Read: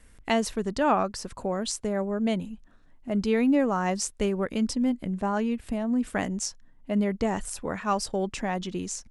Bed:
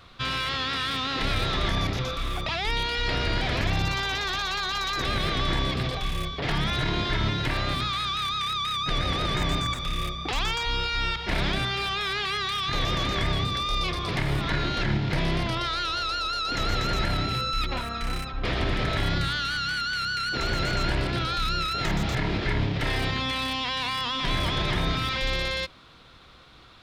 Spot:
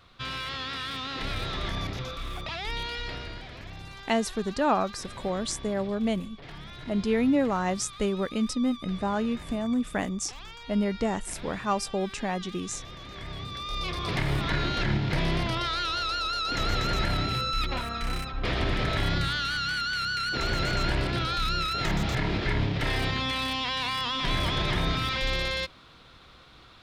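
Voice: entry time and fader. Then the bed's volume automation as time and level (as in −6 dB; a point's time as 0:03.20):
3.80 s, −1.0 dB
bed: 0:02.93 −6 dB
0:03.51 −17 dB
0:13.01 −17 dB
0:14.09 −1 dB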